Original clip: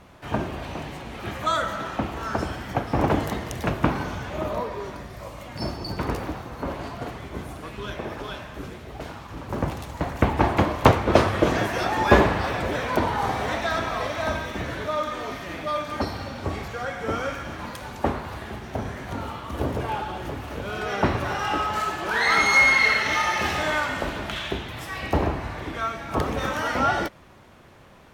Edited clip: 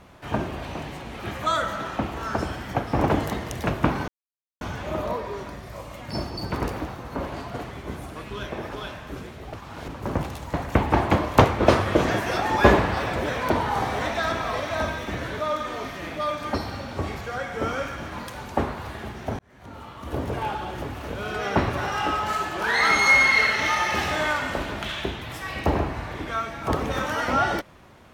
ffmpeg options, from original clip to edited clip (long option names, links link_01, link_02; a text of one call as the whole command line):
ffmpeg -i in.wav -filter_complex "[0:a]asplit=5[link_01][link_02][link_03][link_04][link_05];[link_01]atrim=end=4.08,asetpts=PTS-STARTPTS,afade=type=out:start_time=4.076:duration=0.004:curve=hsin,apad=pad_dur=0.53[link_06];[link_02]atrim=start=4.08:end=9.012,asetpts=PTS-STARTPTS,afade=type=in:duration=0.004:curve=hsin[link_07];[link_03]atrim=start=9.008:end=9.352,asetpts=PTS-STARTPTS,areverse[link_08];[link_04]atrim=start=9.348:end=18.86,asetpts=PTS-STARTPTS,afade=type=out:start_time=9.508:duration=0.004:curve=hsin[link_09];[link_05]atrim=start=18.86,asetpts=PTS-STARTPTS,afade=type=in:duration=1.03[link_10];[link_06][link_07]concat=n=2:v=0:a=1[link_11];[link_11][link_08]acrossfade=duration=0.004:curve1=hsin:curve2=hsin[link_12];[link_09][link_10]concat=n=2:v=0:a=1[link_13];[link_12][link_13]acrossfade=duration=0.004:curve1=hsin:curve2=hsin" out.wav